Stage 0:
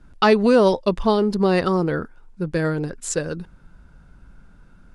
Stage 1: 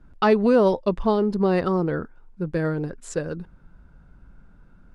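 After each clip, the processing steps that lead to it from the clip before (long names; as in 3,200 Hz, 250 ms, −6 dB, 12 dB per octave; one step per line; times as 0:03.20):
high-shelf EQ 2,800 Hz −11 dB
level −2 dB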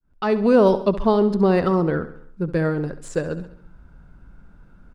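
fade in at the beginning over 0.59 s
de-essing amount 85%
repeating echo 68 ms, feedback 52%, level −14 dB
level +3 dB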